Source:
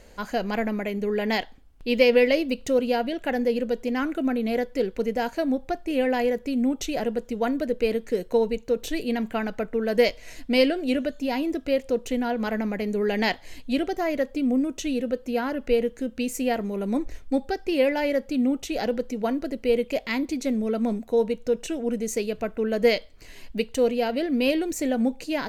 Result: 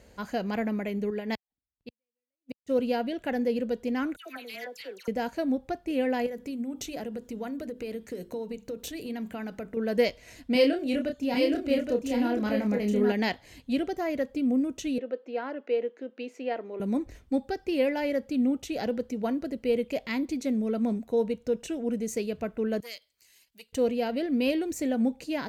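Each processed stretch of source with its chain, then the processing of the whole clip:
1.10–2.72 s: inverted gate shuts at -14 dBFS, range -37 dB + upward expansion 2.5:1, over -45 dBFS
4.16–5.08 s: differentiator + phase dispersion lows, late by 96 ms, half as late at 1.5 kHz + overdrive pedal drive 23 dB, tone 1.8 kHz, clips at -16 dBFS
6.26–9.77 s: compression 5:1, threshold -28 dBFS + treble shelf 6.6 kHz +6.5 dB + hum notches 50/100/150/200/250/300/350/400 Hz
10.52–13.12 s: doubling 29 ms -5 dB + delay 820 ms -4.5 dB
14.98–16.80 s: high-pass 330 Hz 24 dB/octave + distance through air 230 m
22.80–23.73 s: pre-emphasis filter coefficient 0.97 + transformer saturation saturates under 2 kHz
whole clip: high-pass 73 Hz 12 dB/octave; bass shelf 200 Hz +8.5 dB; trim -5.5 dB

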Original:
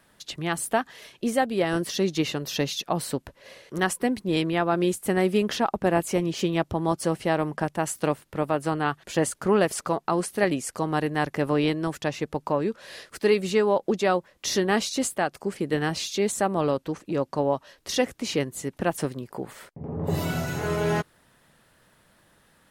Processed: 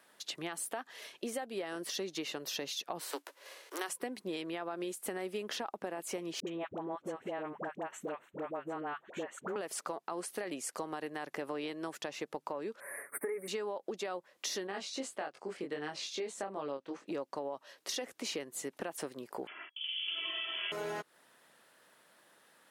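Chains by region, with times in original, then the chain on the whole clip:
2.99–3.88 s: formants flattened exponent 0.6 + rippled Chebyshev high-pass 280 Hz, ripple 3 dB
6.40–9.56 s: boxcar filter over 9 samples + compression 2.5:1, threshold -28 dBFS + phase dispersion highs, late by 69 ms, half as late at 710 Hz
12.80–13.48 s: Chebyshev band-stop 2.2–8.6 kHz, order 5 + treble shelf 6 kHz +11 dB + comb 7.1 ms, depth 72%
14.67–17.08 s: chorus 1.6 Hz, delay 20 ms, depth 2.4 ms + distance through air 63 m
19.47–20.72 s: frequency inversion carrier 3.3 kHz + comb 3 ms, depth 68%
whole clip: high-pass 350 Hz 12 dB/octave; peak limiter -16.5 dBFS; compression, threshold -33 dBFS; trim -2.5 dB

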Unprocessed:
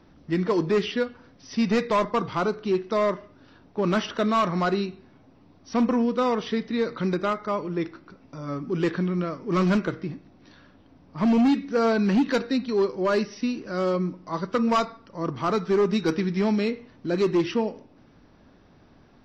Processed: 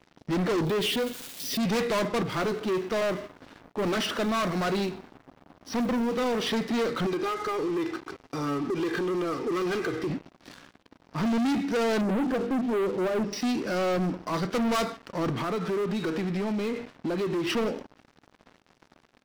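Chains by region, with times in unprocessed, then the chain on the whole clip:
0.65–1.63 s: zero-crossing glitches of -32 dBFS + FFT filter 540 Hz 0 dB, 900 Hz -12 dB, 3.6 kHz +2 dB, 5.3 kHz -6 dB + compression 2.5:1, threshold -25 dBFS
2.23–6.42 s: companding laws mixed up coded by mu + flange 1.6 Hz, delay 0.9 ms, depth 3.1 ms, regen -82% + tape noise reduction on one side only decoder only
7.06–10.10 s: comb 2.5 ms, depth 78% + compression 4:1, threshold -31 dBFS
12.01–13.33 s: boxcar filter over 22 samples + hum notches 50/100/150/200/250/300/350 Hz + transformer saturation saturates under 570 Hz
15.35–17.50 s: low-pass 4.1 kHz + compression 10:1, threshold -30 dBFS
whole clip: dynamic bell 1 kHz, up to -7 dB, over -41 dBFS, Q 1.9; Bessel high-pass 170 Hz, order 2; waveshaping leveller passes 5; trim -9 dB

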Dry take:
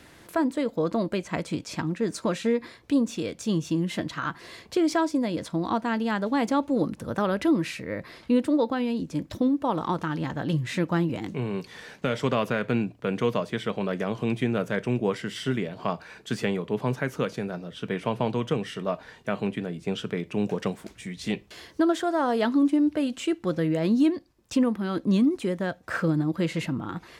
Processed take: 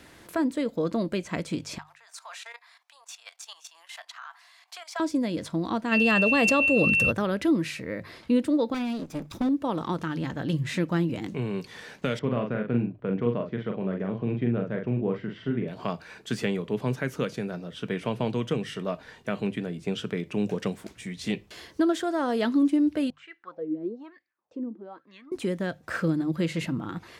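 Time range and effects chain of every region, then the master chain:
1.78–5.00 s: Chebyshev high-pass 720 Hz, order 5 + level held to a coarse grid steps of 14 dB
5.91–7.10 s: comb 1.7 ms, depth 46% + whistle 2.7 kHz -28 dBFS + level flattener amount 70%
8.74–9.49 s: comb filter that takes the minimum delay 0.81 ms + bass shelf 91 Hz -10 dB
12.19–15.68 s: tape spacing loss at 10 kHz 45 dB + doubling 42 ms -4.5 dB
23.10–25.32 s: low-pass 5.8 kHz + treble shelf 4.5 kHz +7.5 dB + wah-wah 1.1 Hz 290–2000 Hz, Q 6.4
whole clip: hum notches 50/100/150 Hz; dynamic bell 900 Hz, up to -5 dB, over -39 dBFS, Q 1.1

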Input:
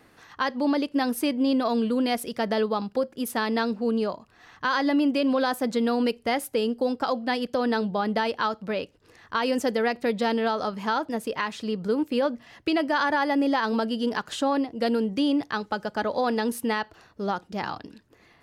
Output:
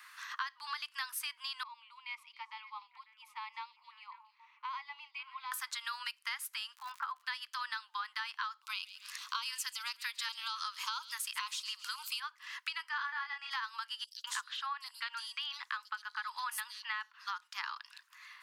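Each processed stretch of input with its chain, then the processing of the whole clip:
1.63–5.52 s: vowel filter u + repeats whose band climbs or falls 273 ms, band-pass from 5 kHz, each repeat -1.4 oct, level -10.5 dB
6.75–7.21 s: low-pass 1.7 kHz + crackle 130 per s -44 dBFS
8.62–12.20 s: treble shelf 2.5 kHz +12 dB + LFO notch square 1.8 Hz 500–1800 Hz + feedback echo behind a high-pass 136 ms, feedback 33%, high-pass 2.8 kHz, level -14 dB
12.89–13.51 s: distance through air 130 m + doubling 28 ms -4 dB
14.04–17.27 s: bands offset in time highs, lows 200 ms, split 4.3 kHz + three bands expanded up and down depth 40%
whole clip: steep high-pass 1 kHz 72 dB/octave; compression 6:1, threshold -43 dBFS; trim +6 dB

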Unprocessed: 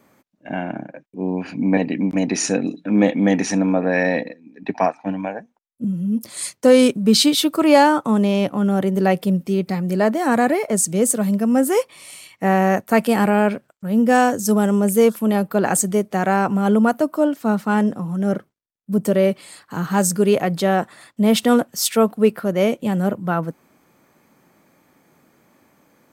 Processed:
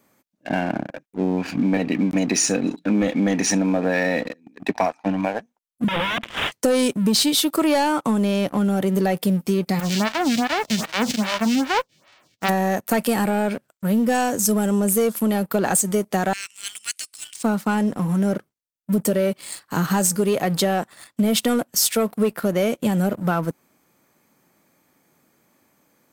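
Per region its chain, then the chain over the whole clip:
5.88–6.52 s: high-pass 94 Hz 24 dB/octave + integer overflow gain 23 dB + careless resampling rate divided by 6×, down none, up filtered
9.79–12.48 s: formants flattened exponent 0.1 + distance through air 180 m + lamp-driven phase shifter 2.5 Hz
16.33–17.43 s: elliptic band-pass 2.2–9.3 kHz, stop band 50 dB + tilt EQ +2.5 dB/octave
whole clip: treble shelf 3.9 kHz +8 dB; waveshaping leveller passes 2; compression, threshold -14 dBFS; trim -3 dB

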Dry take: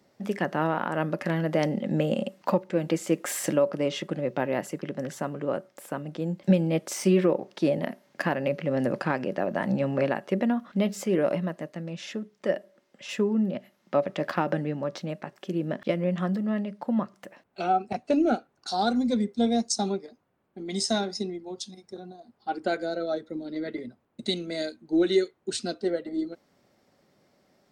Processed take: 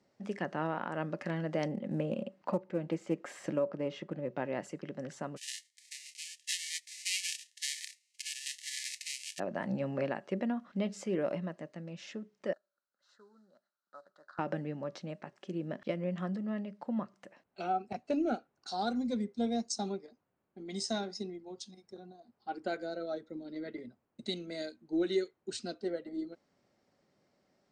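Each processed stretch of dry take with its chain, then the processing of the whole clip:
1.68–4.37 s: low-pass 2 kHz 6 dB/octave + careless resampling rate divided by 2×, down none, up zero stuff + loudspeaker Doppler distortion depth 0.11 ms
5.36–9.38 s: formants flattened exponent 0.1 + brick-wall FIR high-pass 1.7 kHz + Shepard-style phaser rising 1 Hz
12.53–14.39 s: CVSD coder 64 kbps + two resonant band-passes 2.4 kHz, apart 1.5 oct + peaking EQ 3.2 kHz -15 dB 1.5 oct
whole clip: low-pass 8.5 kHz 24 dB/octave; band-stop 3.5 kHz, Q 23; trim -8.5 dB

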